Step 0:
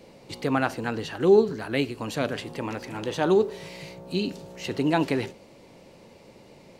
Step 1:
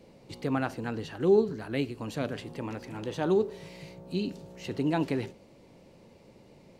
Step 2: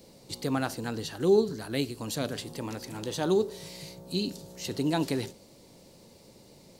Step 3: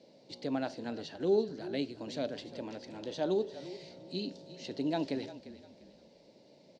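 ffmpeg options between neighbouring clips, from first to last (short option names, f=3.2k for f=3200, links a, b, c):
-af "lowshelf=f=390:g=6.5,volume=-8dB"
-af "aexciter=amount=5:drive=1.5:freq=3.6k"
-filter_complex "[0:a]highpass=170,equalizer=f=280:t=q:w=4:g=4,equalizer=f=610:t=q:w=4:g=9,equalizer=f=1.2k:t=q:w=4:g=-9,lowpass=f=5.3k:w=0.5412,lowpass=f=5.3k:w=1.3066,asplit=4[a][b][c][d];[b]adelay=348,afreqshift=-32,volume=-15dB[e];[c]adelay=696,afreqshift=-64,volume=-24.9dB[f];[d]adelay=1044,afreqshift=-96,volume=-34.8dB[g];[a][e][f][g]amix=inputs=4:normalize=0,volume=-7dB"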